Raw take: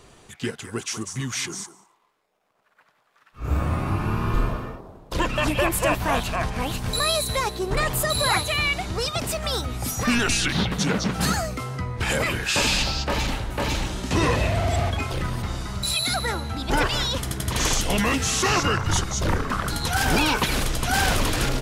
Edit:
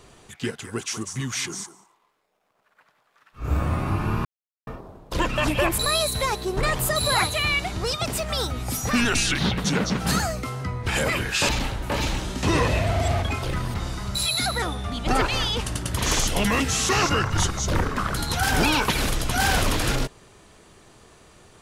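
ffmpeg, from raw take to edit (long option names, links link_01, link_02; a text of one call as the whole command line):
ffmpeg -i in.wav -filter_complex "[0:a]asplit=7[link_01][link_02][link_03][link_04][link_05][link_06][link_07];[link_01]atrim=end=4.25,asetpts=PTS-STARTPTS,afade=type=out:start_time=4.246:duration=0.004:curve=hsin[link_08];[link_02]atrim=start=4.25:end=4.67,asetpts=PTS-STARTPTS,volume=0[link_09];[link_03]atrim=start=4.67:end=5.782,asetpts=PTS-STARTPTS,afade=type=in:duration=0.004:curve=hsin[link_10];[link_04]atrim=start=6.918:end=12.632[link_11];[link_05]atrim=start=13.168:end=16.304[link_12];[link_06]atrim=start=16.3:end=17.47,asetpts=PTS-STARTPTS,asetrate=39249,aresample=44100,atrim=end_sample=57974,asetpts=PTS-STARTPTS[link_13];[link_07]atrim=start=17.466[link_14];[link_08][link_09][link_10]concat=n=3:v=0:a=1[link_15];[link_15][link_11]acrossfade=duration=0.004:curve1=hsin:curve2=hsin[link_16];[link_16][link_12]acrossfade=duration=0.004:curve1=hsin:curve2=hsin[link_17];[link_17][link_13]acrossfade=duration=0.004:curve1=hsin:curve2=hsin[link_18];[link_18][link_14]acrossfade=duration=0.004:curve1=hsin:curve2=hsin" out.wav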